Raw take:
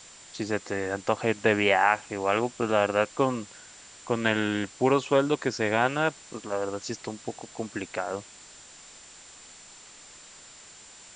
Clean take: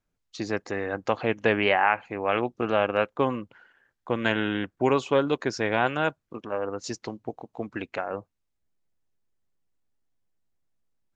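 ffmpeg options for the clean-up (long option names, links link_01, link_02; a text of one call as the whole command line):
ffmpeg -i in.wav -af "bandreject=frequency=7200:width=30,afwtdn=0.0045,asetnsamples=nb_out_samples=441:pad=0,asendcmd='10.54 volume volume 7dB',volume=0dB" out.wav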